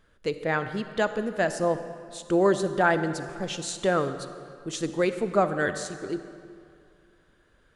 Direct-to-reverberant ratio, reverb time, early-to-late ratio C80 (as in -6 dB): 10.0 dB, 2.4 s, 11.5 dB